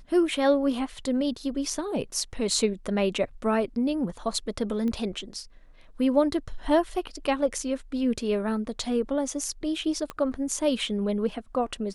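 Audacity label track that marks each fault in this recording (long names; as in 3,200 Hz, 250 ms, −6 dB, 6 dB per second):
4.880000	4.880000	click −21 dBFS
10.100000	10.100000	click −19 dBFS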